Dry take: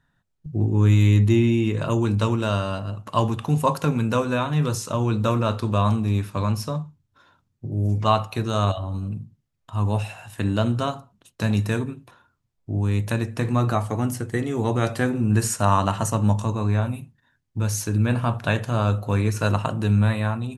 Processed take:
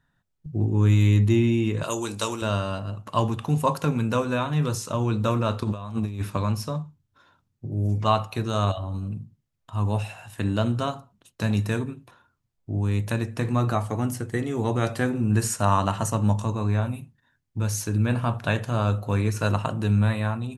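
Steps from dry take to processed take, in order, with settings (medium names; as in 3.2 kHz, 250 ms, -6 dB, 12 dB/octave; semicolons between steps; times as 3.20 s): 1.83–2.42 s: tone controls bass -15 dB, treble +14 dB; 5.62–6.37 s: compressor with a negative ratio -25 dBFS, ratio -0.5; trim -2 dB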